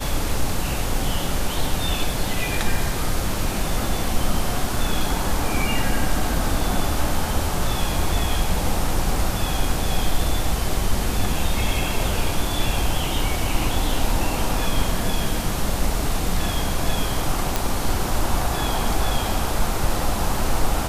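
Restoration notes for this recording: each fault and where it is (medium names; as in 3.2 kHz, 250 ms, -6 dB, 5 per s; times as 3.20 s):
17.56 s: pop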